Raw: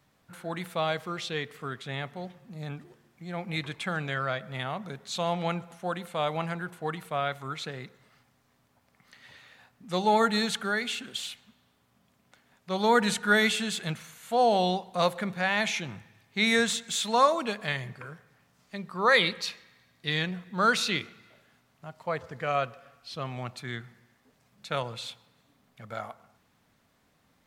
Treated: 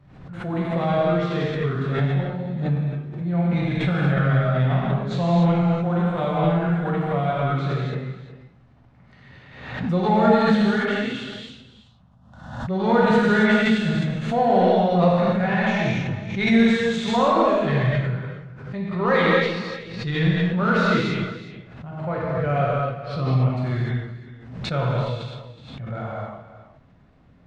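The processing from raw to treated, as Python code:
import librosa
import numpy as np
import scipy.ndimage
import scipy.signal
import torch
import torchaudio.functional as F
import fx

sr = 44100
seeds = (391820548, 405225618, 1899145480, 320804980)

p1 = fx.low_shelf(x, sr, hz=210.0, db=12.0)
p2 = fx.env_phaser(p1, sr, low_hz=320.0, high_hz=2200.0, full_db=-37.0, at=(11.23, 12.78))
p3 = np.clip(10.0 ** (25.5 / 20.0) * p2, -1.0, 1.0) / 10.0 ** (25.5 / 20.0)
p4 = p2 + F.gain(torch.from_numpy(p3), -3.5).numpy()
p5 = fx.spacing_loss(p4, sr, db_at_10k=29)
p6 = p5 + 10.0 ** (-14.5 / 20.0) * np.pad(p5, (int(370 * sr / 1000.0), 0))[:len(p5)]
p7 = fx.rev_gated(p6, sr, seeds[0], gate_ms=320, shape='flat', drr_db=-7.0)
p8 = fx.pre_swell(p7, sr, db_per_s=61.0)
y = F.gain(torch.from_numpy(p8), -3.0).numpy()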